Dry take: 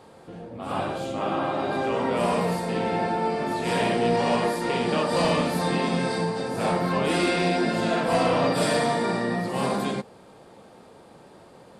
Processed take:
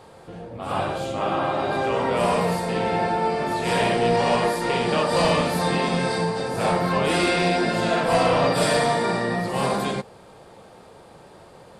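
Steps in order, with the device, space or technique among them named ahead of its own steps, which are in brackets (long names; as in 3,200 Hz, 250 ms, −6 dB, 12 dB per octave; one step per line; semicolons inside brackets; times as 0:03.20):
low shelf boost with a cut just above (low-shelf EQ 77 Hz +5.5 dB; parametric band 250 Hz −6 dB 0.89 octaves)
level +3.5 dB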